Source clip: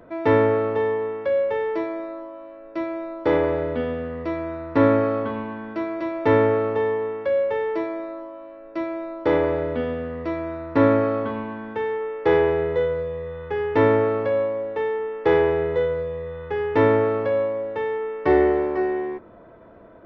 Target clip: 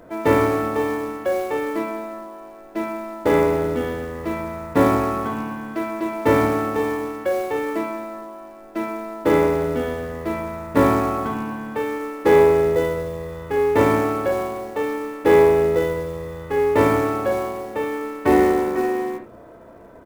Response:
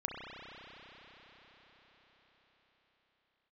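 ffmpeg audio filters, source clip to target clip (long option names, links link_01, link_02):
-filter_complex "[0:a]acrusher=bits=6:mode=log:mix=0:aa=0.000001,asplit=3[link_01][link_02][link_03];[link_02]asetrate=29433,aresample=44100,atempo=1.49831,volume=-11dB[link_04];[link_03]asetrate=58866,aresample=44100,atempo=0.749154,volume=-17dB[link_05];[link_01][link_04][link_05]amix=inputs=3:normalize=0[link_06];[1:a]atrim=start_sample=2205,atrim=end_sample=3969[link_07];[link_06][link_07]afir=irnorm=-1:irlink=0,volume=3dB"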